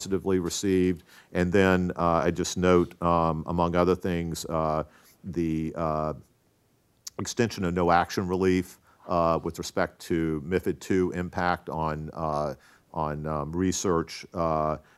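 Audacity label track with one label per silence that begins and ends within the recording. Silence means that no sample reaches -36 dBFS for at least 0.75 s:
6.180000	7.070000	silence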